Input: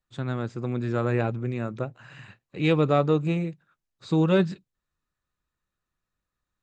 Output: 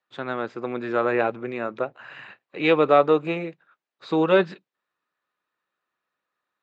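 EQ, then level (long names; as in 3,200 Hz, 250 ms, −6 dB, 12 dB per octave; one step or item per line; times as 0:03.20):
band-pass filter 430–3,100 Hz
+7.5 dB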